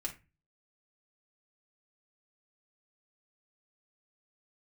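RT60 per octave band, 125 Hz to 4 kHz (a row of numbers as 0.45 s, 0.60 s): 0.55 s, 0.40 s, 0.25 s, 0.25 s, 0.30 s, 0.20 s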